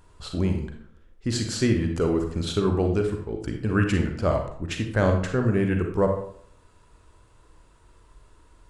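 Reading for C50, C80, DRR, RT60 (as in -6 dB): 6.0 dB, 9.5 dB, 3.5 dB, 0.60 s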